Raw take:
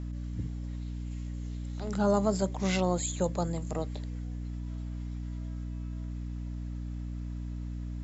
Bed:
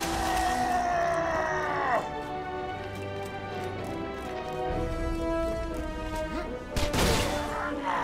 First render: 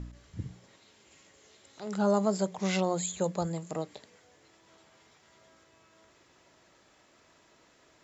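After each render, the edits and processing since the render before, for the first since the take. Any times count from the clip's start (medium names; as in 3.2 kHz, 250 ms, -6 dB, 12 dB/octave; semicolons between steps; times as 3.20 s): de-hum 60 Hz, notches 5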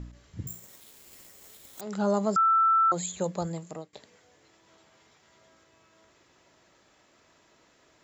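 0.47–1.81 s: careless resampling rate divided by 6×, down none, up zero stuff; 2.36–2.92 s: bleep 1.33 kHz -18.5 dBFS; 3.47–3.93 s: fade out equal-power, to -21 dB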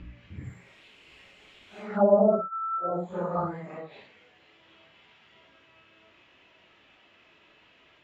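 phase randomisation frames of 200 ms; touch-sensitive low-pass 600–2900 Hz down, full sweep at -21.5 dBFS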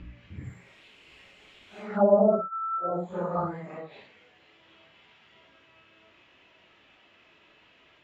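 no audible change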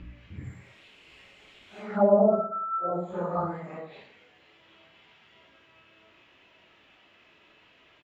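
feedback delay 115 ms, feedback 26%, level -14 dB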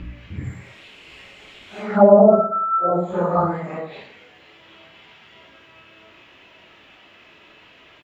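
trim +10 dB; peak limiter -1 dBFS, peak gain reduction 2 dB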